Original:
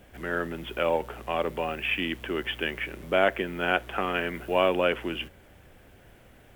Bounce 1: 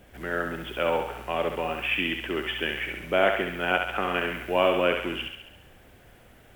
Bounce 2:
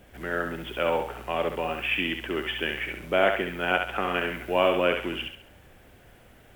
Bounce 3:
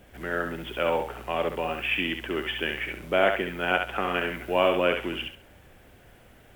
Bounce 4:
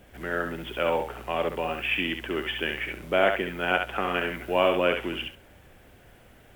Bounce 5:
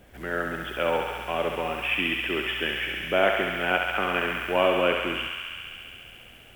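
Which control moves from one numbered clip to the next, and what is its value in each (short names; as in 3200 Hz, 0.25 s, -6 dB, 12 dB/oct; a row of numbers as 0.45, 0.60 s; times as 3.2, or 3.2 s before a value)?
thinning echo, feedback: 60, 39, 25, 15, 90%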